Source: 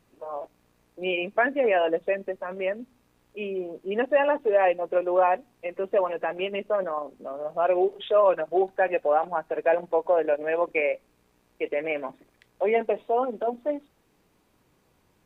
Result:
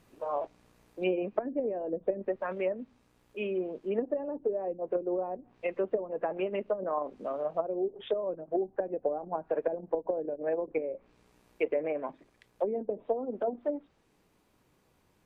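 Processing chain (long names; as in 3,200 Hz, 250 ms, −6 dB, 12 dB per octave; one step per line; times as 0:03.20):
treble cut that deepens with the level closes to 300 Hz, closed at −20.5 dBFS
speech leveller within 3 dB 0.5 s
level −1 dB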